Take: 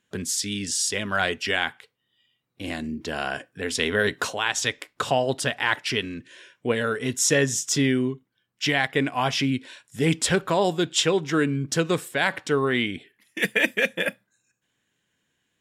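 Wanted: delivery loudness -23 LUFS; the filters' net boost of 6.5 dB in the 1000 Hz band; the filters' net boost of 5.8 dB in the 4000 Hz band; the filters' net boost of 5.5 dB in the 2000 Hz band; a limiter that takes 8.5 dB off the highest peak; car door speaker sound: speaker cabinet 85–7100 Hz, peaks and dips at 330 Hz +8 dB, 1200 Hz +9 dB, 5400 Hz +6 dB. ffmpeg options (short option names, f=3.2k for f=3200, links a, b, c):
-af "equalizer=f=1k:t=o:g=3,equalizer=f=2k:t=o:g=3.5,equalizer=f=4k:t=o:g=4.5,alimiter=limit=-11.5dB:level=0:latency=1,highpass=85,equalizer=f=330:t=q:w=4:g=8,equalizer=f=1.2k:t=q:w=4:g=9,equalizer=f=5.4k:t=q:w=4:g=6,lowpass=f=7.1k:w=0.5412,lowpass=f=7.1k:w=1.3066,volume=-0.5dB"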